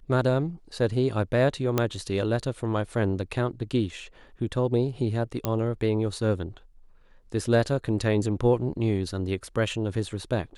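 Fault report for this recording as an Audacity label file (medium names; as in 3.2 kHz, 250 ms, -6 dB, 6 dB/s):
1.780000	1.780000	pop -9 dBFS
5.450000	5.450000	pop -11 dBFS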